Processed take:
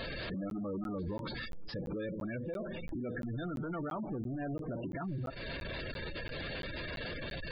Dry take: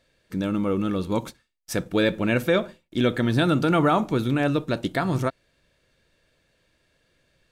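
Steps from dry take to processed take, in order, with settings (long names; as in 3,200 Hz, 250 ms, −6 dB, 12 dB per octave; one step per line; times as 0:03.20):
converter with a step at zero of −32.5 dBFS
downward compressor 12 to 1, threshold −27 dBFS, peak gain reduction 12.5 dB
brickwall limiter −25.5 dBFS, peak gain reduction 7.5 dB
hard clipping −35 dBFS, distortion −8 dB
downsampling to 11,025 Hz
gate on every frequency bin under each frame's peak −15 dB strong
backwards echo 285 ms −22 dB
regular buffer underruns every 0.34 s, samples 512, zero, from 0:00.50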